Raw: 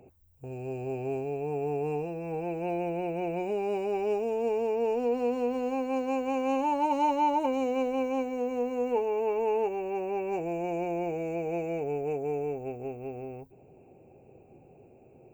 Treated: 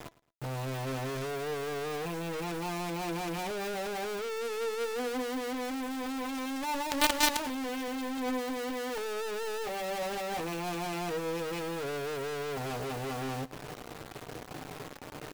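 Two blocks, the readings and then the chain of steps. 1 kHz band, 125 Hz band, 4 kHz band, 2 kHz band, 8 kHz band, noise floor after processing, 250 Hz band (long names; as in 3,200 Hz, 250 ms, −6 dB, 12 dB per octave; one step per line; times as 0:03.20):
−4.0 dB, +0.5 dB, +14.0 dB, +7.0 dB, can't be measured, −47 dBFS, −3.5 dB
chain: high-shelf EQ 6,500 Hz −11.5 dB
comb filter 6.7 ms, depth 73%
dynamic equaliser 350 Hz, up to −4 dB, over −38 dBFS, Q 2.4
in parallel at −11 dB: fuzz pedal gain 50 dB, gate −51 dBFS
on the sum: log-companded quantiser 2 bits
flanger 0.32 Hz, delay 2.9 ms, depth 1.5 ms, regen +85%
on a send: repeating echo 110 ms, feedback 31%, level −20 dB
on the sum: level −5.5 dB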